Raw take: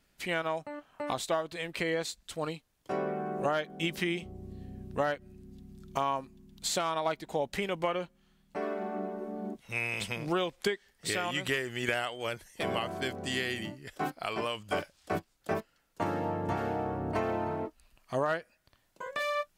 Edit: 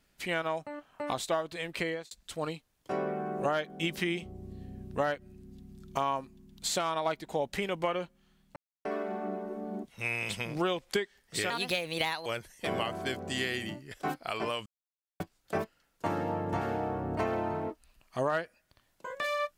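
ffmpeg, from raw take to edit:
-filter_complex "[0:a]asplit=7[a][b][c][d][e][f][g];[a]atrim=end=2.11,asetpts=PTS-STARTPTS,afade=t=out:st=1.82:d=0.29[h];[b]atrim=start=2.11:end=8.56,asetpts=PTS-STARTPTS,afade=t=in:d=0.004:c=hsin,afade=t=out:st=6.446:d=0.004:c=hsin,apad=pad_dur=0.29[i];[c]atrim=start=8.56:end=11.214,asetpts=PTS-STARTPTS,afade=t=in:d=0.004:c=hsin[j];[d]atrim=start=11.21:end=12.22,asetpts=PTS-STARTPTS,asetrate=58653,aresample=44100,atrim=end_sample=33489,asetpts=PTS-STARTPTS[k];[e]atrim=start=12.216:end=14.62,asetpts=PTS-STARTPTS,afade=t=out:st=2.4:d=0.004:c=hsin[l];[f]atrim=start=14.62:end=15.16,asetpts=PTS-STARTPTS,volume=0[m];[g]atrim=start=15.16,asetpts=PTS-STARTPTS,afade=t=in:d=0.004:c=hsin[n];[h][i][j]concat=n=3:v=0:a=1[o];[o][k]acrossfade=d=0.004:c1=hsin:c2=hsin[p];[l][m][n]concat=n=3:v=0:a=1[q];[p][q]acrossfade=d=0.004:c1=hsin:c2=hsin"

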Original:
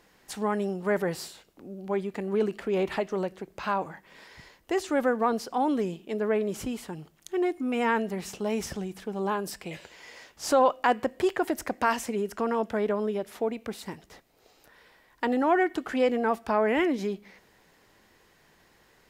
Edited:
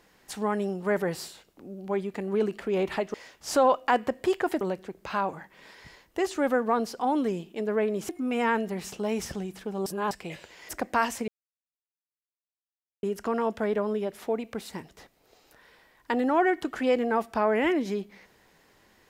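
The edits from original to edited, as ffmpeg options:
-filter_complex "[0:a]asplit=8[a][b][c][d][e][f][g][h];[a]atrim=end=3.142[i];[b]atrim=start=10.098:end=11.572[j];[c]atrim=start=3.138:end=6.622[k];[d]atrim=start=7.498:end=9.272[l];[e]atrim=start=9.268:end=9.522,asetpts=PTS-STARTPTS,areverse[m];[f]atrim=start=9.518:end=10.102[n];[g]atrim=start=11.568:end=12.16,asetpts=PTS-STARTPTS,afade=t=out:st=0.588:d=0.004:c=hsin,apad=pad_dur=1.75[o];[h]atrim=start=12.16,asetpts=PTS-STARTPTS,afade=t=in:d=0.004:c=hsin[p];[i][j]acrossfade=d=0.004:c1=hsin:c2=hsin[q];[q][k]acrossfade=d=0.004:c1=hsin:c2=hsin[r];[r][l]acrossfade=d=0.004:c1=hsin:c2=hsin[s];[s][m]acrossfade=d=0.004:c1=hsin:c2=hsin[t];[t][n]acrossfade=d=0.004:c1=hsin:c2=hsin[u];[o][p]concat=n=2:v=0:a=1[v];[u][v]acrossfade=d=0.004:c1=hsin:c2=hsin"

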